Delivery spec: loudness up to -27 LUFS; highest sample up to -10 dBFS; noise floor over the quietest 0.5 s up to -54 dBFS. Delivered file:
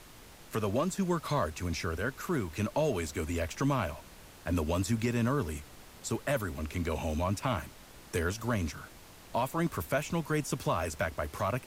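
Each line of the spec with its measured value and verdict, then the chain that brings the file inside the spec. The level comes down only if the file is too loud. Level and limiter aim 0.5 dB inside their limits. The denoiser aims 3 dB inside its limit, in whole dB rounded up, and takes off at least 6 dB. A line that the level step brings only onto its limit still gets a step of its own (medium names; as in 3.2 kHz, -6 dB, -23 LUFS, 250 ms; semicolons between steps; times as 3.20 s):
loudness -33.0 LUFS: pass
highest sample -19.0 dBFS: pass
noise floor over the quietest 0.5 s -52 dBFS: fail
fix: noise reduction 6 dB, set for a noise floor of -52 dBFS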